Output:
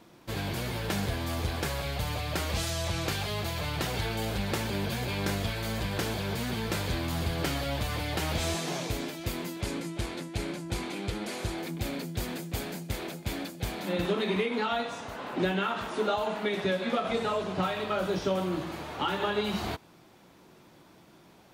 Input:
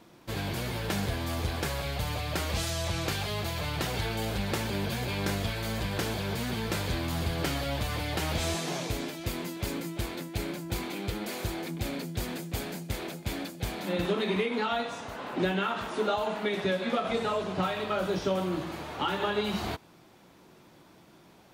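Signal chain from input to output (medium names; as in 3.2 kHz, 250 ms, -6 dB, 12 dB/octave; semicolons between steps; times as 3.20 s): 9.61–11.58 s: low-pass 11 kHz 24 dB/octave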